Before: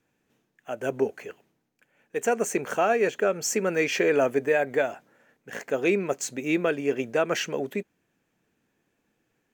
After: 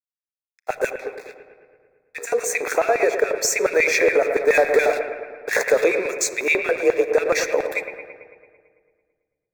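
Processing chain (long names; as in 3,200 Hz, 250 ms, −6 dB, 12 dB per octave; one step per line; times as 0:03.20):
low-shelf EQ 150 Hz −11.5 dB
mains-hum notches 60/120/180/240/300/360/420/480 Hz
downward compressor, threshold −28 dBFS, peak gain reduction 9.5 dB
0:00.90–0:02.32: tuned comb filter 68 Hz, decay 0.45 s, harmonics all, mix 70%
dead-zone distortion −50 dBFS
0:06.49–0:07.05: frequency shifter +46 Hz
auto-filter high-pass square 7.1 Hz 480–2,300 Hz
0:04.48–0:05.84: power curve on the samples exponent 0.7
Butterworth band-reject 3,000 Hz, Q 2.9
bucket-brigade delay 111 ms, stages 2,048, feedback 64%, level −10.5 dB
rectangular room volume 2,900 cubic metres, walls mixed, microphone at 0.41 metres
boost into a limiter +18 dB
level −6.5 dB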